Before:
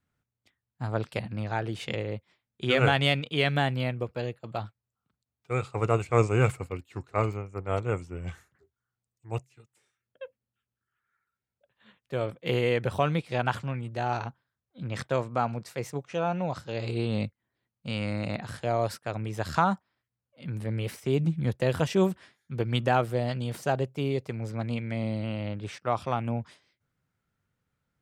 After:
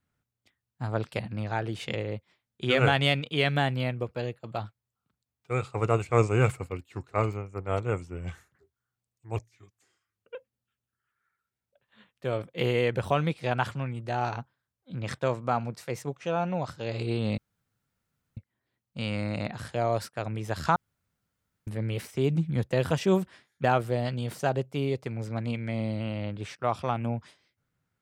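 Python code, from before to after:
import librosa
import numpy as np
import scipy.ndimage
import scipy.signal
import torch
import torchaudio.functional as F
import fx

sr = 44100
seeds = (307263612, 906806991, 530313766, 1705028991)

y = fx.edit(x, sr, fx.speed_span(start_s=9.36, length_s=0.87, speed=0.88),
    fx.insert_room_tone(at_s=17.26, length_s=0.99),
    fx.room_tone_fill(start_s=19.65, length_s=0.91),
    fx.cut(start_s=22.53, length_s=0.34), tone=tone)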